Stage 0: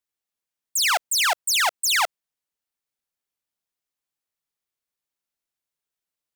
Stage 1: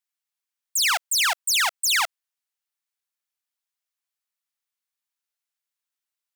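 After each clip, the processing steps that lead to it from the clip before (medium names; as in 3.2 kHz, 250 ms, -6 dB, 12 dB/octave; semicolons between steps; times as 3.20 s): high-pass 960 Hz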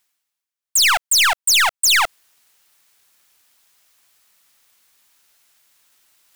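reverse; upward compressor, threshold -34 dBFS; reverse; waveshaping leveller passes 2; trim +2 dB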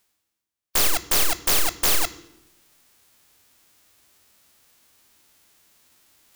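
formants flattened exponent 0.1; saturation -10.5 dBFS, distortion -11 dB; on a send at -12 dB: reverberation RT60 0.90 s, pre-delay 3 ms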